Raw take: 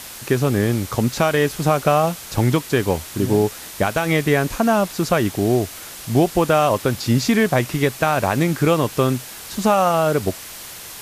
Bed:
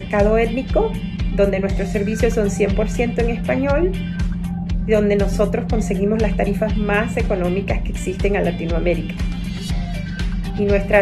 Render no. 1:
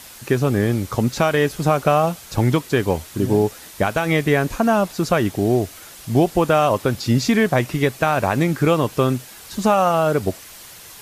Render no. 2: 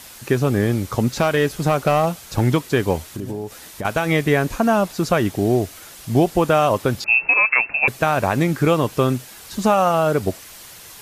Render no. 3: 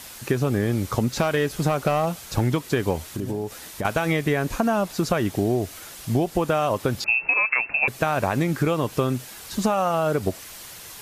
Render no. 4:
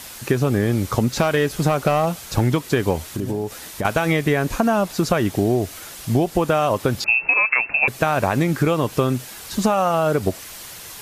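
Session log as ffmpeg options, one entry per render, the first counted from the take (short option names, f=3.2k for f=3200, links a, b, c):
-af "afftdn=nr=6:nf=-36"
-filter_complex "[0:a]asettb=1/sr,asplit=3[a][b][c];[a]atrim=end=1.114[d];[b]atrim=start=1.11:end=2.47,asetpts=PTS-STARTPTS,afade=t=in:d=0.004:c=qsin,afade=t=out:st=1.356:d=0.004:c=qsin,asoftclip=type=hard:threshold=-10.5dB[e];[c]atrim=start=2.466[f];[d][e]acrossfade=d=0.004:c1=hsin:c2=qsin[g];[g][f]acrossfade=d=0.004:c1=qsin:c2=hsin,asettb=1/sr,asplit=3[h][i][j];[h]atrim=end=3.044[k];[i]atrim=start=3.04:end=3.85,asetpts=PTS-STARTPTS,afade=t=in:d=0.004:c=qsin,afade=t=out:st=0.806:d=0.004:c=qsin,acompressor=threshold=-24dB:ratio=8:attack=3.2:release=140:knee=1:detection=peak[l];[j]atrim=start=3.846[m];[k][l]acrossfade=d=0.004:c1=hsin:c2=qsin[n];[n][m]acrossfade=d=0.004:c1=qsin:c2=hsin,asettb=1/sr,asplit=3[o][p][q];[o]atrim=end=7.044[r];[p]atrim=start=7.04:end=7.88,asetpts=PTS-STARTPTS,afade=t=in:d=0.004:c=qsin,afade=t=out:st=0.836:d=0.004:c=qsin,lowpass=f=2.4k:t=q:w=0.5098,lowpass=f=2.4k:t=q:w=0.6013,lowpass=f=2.4k:t=q:w=0.9,lowpass=f=2.4k:t=q:w=2.563,afreqshift=-2800[s];[q]atrim=start=7.876[t];[r][s]acrossfade=d=0.004:c1=hsin:c2=qsin[u];[u][t]acrossfade=d=0.004:c1=qsin:c2=hsin"
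-af "acompressor=threshold=-18dB:ratio=6"
-af "volume=3.5dB"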